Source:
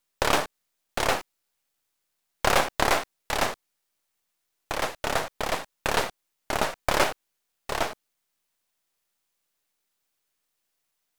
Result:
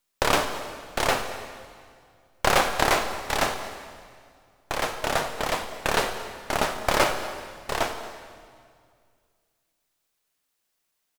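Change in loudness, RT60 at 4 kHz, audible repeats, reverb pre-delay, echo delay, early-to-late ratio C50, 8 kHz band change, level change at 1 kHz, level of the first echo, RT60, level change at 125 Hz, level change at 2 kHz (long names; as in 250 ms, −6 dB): +1.0 dB, 1.8 s, 1, 9 ms, 228 ms, 8.0 dB, +2.0 dB, +2.0 dB, −19.5 dB, 2.1 s, +2.0 dB, +2.0 dB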